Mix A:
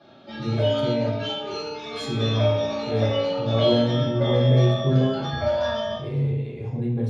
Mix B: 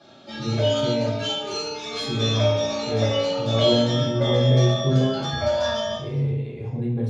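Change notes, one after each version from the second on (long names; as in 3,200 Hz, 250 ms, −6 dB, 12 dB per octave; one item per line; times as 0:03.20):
background: remove high-frequency loss of the air 190 metres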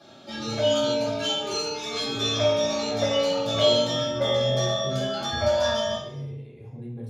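speech −11.5 dB
master: remove low-pass filter 6,400 Hz 12 dB per octave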